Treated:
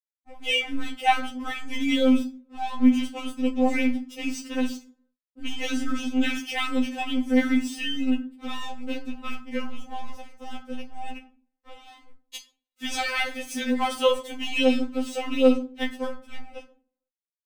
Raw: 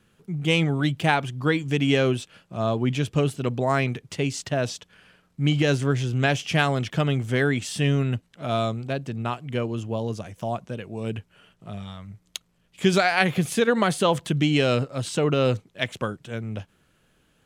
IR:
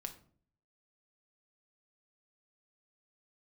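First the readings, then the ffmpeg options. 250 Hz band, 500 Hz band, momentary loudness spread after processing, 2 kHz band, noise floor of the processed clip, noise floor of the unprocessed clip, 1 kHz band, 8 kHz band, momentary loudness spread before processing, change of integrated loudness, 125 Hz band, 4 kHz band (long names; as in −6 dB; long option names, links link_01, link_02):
+1.5 dB, −3.5 dB, 19 LU, −3.5 dB, below −85 dBFS, −65 dBFS, −2.0 dB, −4.0 dB, 13 LU, −1.5 dB, below −25 dB, −0.5 dB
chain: -filter_complex "[0:a]aeval=exprs='sgn(val(0))*max(abs(val(0))-0.0141,0)':channel_layout=same[link_01];[1:a]atrim=start_sample=2205,asetrate=52920,aresample=44100[link_02];[link_01][link_02]afir=irnorm=-1:irlink=0,afftfilt=real='re*3.46*eq(mod(b,12),0)':imag='im*3.46*eq(mod(b,12),0)':win_size=2048:overlap=0.75,volume=6dB"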